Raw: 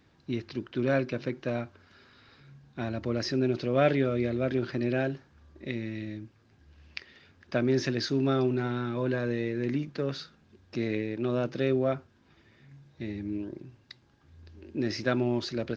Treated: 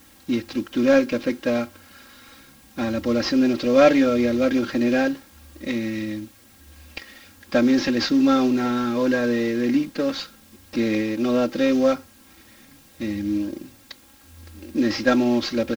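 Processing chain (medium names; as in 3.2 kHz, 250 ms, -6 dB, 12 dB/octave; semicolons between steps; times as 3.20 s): CVSD coder 32 kbps; added noise white -63 dBFS; comb 3.7 ms, depth 87%; trim +6.5 dB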